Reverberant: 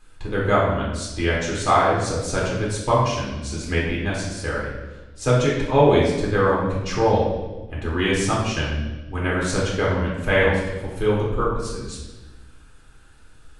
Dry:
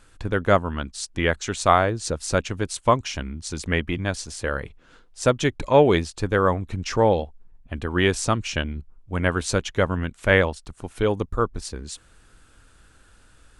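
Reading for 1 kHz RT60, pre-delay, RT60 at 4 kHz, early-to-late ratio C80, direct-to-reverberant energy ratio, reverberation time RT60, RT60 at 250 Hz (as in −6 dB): 1.1 s, 3 ms, 1.0 s, 4.0 dB, −5.0 dB, 1.2 s, 1.6 s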